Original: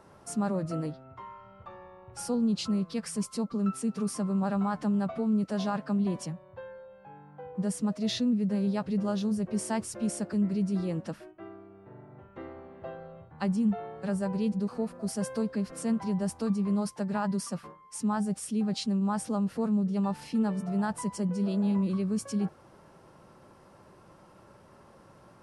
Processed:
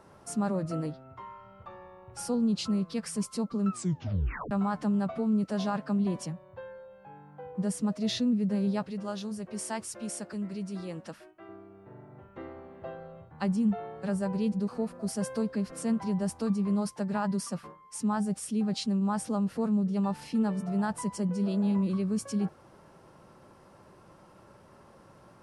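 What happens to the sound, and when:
0:03.70: tape stop 0.81 s
0:08.84–0:11.49: low-shelf EQ 470 Hz −9.5 dB

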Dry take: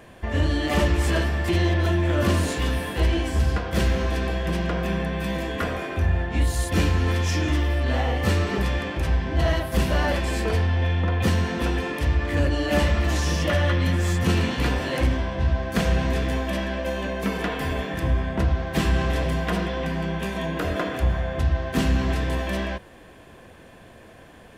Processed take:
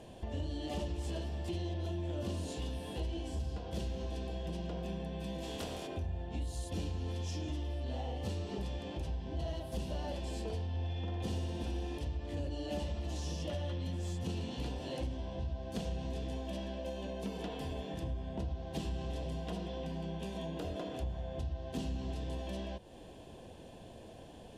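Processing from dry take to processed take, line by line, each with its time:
0:05.42–0:05.86: compressing power law on the bin magnitudes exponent 0.64
0:10.69–0:11.98: flutter between parallel walls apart 10.4 metres, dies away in 1.1 s
whole clip: low-pass filter 10,000 Hz 12 dB per octave; flat-topped bell 1,600 Hz −12.5 dB 1.3 octaves; downward compressor 2.5 to 1, threshold −38 dBFS; level −3.5 dB

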